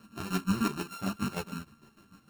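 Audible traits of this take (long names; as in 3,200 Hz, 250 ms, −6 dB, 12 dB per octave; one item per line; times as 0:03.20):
a buzz of ramps at a fixed pitch in blocks of 32 samples
chopped level 6.6 Hz, depth 60%, duty 40%
a shimmering, thickened sound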